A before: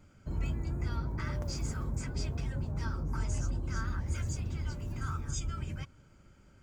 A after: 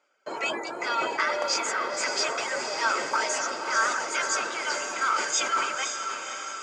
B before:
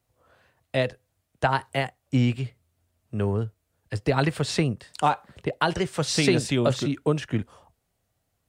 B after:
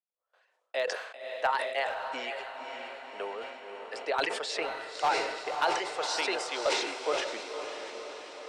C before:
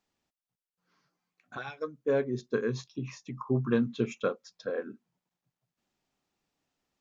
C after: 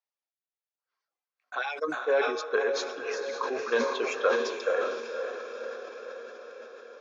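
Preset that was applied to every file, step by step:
gate with hold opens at -49 dBFS; high-pass 500 Hz 24 dB/octave; reverb removal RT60 0.56 s; Bessel low-pass 6 kHz, order 4; in parallel at -0.5 dB: gain riding within 3 dB 0.5 s; on the sum: hard clipper -10 dBFS; on a send: echo that smears into a reverb 539 ms, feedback 63%, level -6 dB; on the sum: decay stretcher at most 51 dB/s; peak normalisation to -12 dBFS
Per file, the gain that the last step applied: +13.0 dB, -9.5 dB, +1.0 dB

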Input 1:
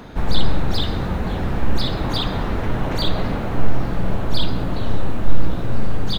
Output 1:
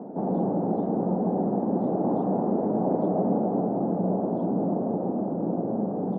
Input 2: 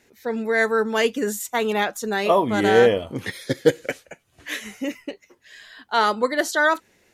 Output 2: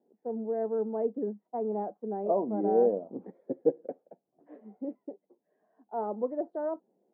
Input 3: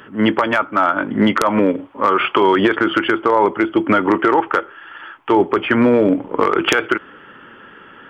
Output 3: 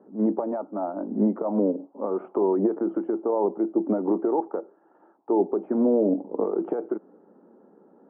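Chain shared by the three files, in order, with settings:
Chebyshev band-pass 190–770 Hz, order 3; peak normalisation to -12 dBFS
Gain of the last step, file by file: +3.5 dB, -8.0 dB, -7.0 dB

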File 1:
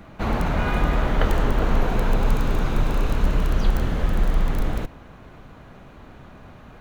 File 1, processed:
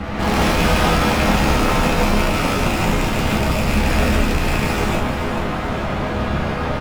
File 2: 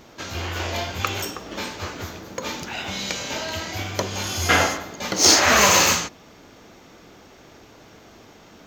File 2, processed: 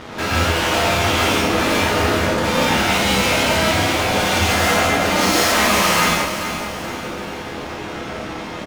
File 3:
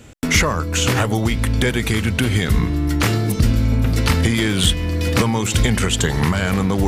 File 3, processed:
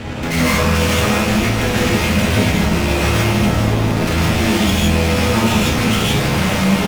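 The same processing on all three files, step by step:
rattle on loud lows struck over -21 dBFS, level -15 dBFS; low-pass 3 kHz 12 dB/octave; dynamic bell 180 Hz, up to +7 dB, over -38 dBFS, Q 4.1; in parallel at -1 dB: compression, threshold -23 dBFS; on the sum: fuzz box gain 35 dB, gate -44 dBFS; chord resonator C#2 minor, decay 0.32 s; on a send: feedback delay 431 ms, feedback 45%, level -10 dB; on the sum: gated-style reverb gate 190 ms rising, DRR -4 dB; peak normalisation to -3 dBFS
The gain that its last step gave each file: +5.5 dB, +3.5 dB, +4.5 dB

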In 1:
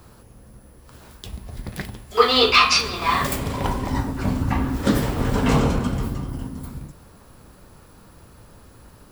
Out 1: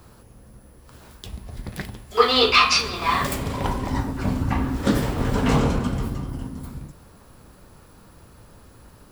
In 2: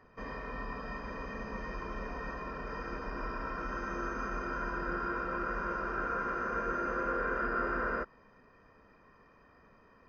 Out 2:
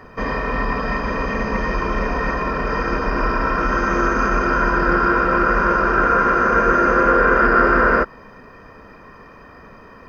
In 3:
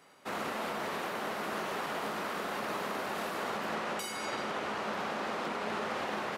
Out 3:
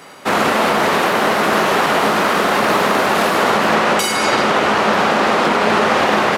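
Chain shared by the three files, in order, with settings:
loudspeaker Doppler distortion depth 0.11 ms; peak normalisation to -2 dBFS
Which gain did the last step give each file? -1.0 dB, +18.5 dB, +21.0 dB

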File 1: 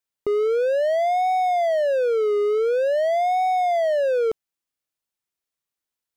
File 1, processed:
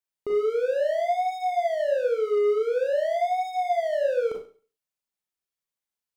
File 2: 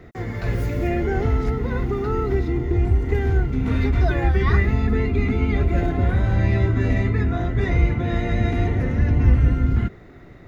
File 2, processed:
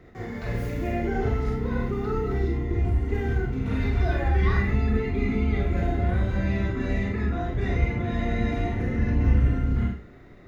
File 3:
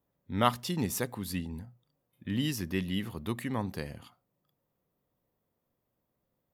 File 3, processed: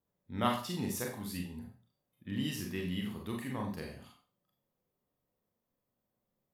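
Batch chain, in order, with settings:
Schroeder reverb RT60 0.39 s, combs from 30 ms, DRR 0 dB; trim -7 dB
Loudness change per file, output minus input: -4.0 LU, -4.5 LU, -4.0 LU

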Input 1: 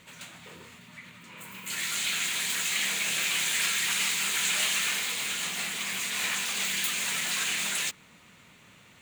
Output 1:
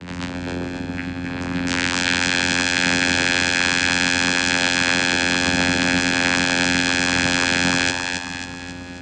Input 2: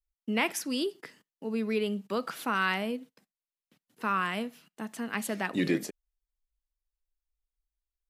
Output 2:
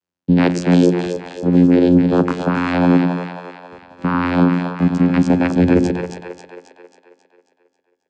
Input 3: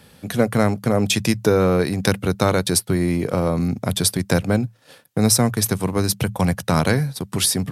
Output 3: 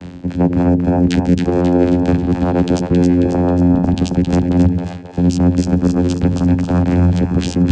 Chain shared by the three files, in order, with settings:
bass shelf 270 Hz +4.5 dB; reverse; compression 12:1, threshold -28 dBFS; reverse; vocoder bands 8, saw 88.5 Hz; two-band feedback delay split 420 Hz, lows 97 ms, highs 270 ms, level -5 dB; peak normalisation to -1.5 dBFS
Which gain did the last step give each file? +13.5 dB, +20.0 dB, +19.5 dB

